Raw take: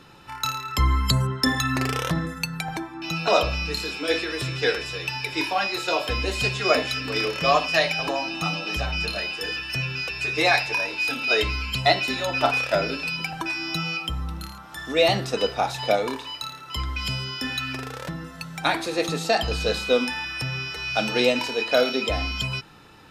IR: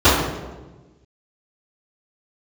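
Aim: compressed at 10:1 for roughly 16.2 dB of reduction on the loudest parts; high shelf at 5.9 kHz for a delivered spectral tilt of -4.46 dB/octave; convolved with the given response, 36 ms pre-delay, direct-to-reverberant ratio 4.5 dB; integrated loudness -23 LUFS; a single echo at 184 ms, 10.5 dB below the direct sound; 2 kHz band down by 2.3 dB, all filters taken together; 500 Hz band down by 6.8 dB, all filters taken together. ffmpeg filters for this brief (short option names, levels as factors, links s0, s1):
-filter_complex "[0:a]equalizer=f=500:t=o:g=-8.5,equalizer=f=2000:t=o:g=-3.5,highshelf=f=5900:g=4.5,acompressor=threshold=0.0224:ratio=10,aecho=1:1:184:0.299,asplit=2[s0][s1];[1:a]atrim=start_sample=2205,adelay=36[s2];[s1][s2]afir=irnorm=-1:irlink=0,volume=0.0266[s3];[s0][s3]amix=inputs=2:normalize=0,volume=2.99"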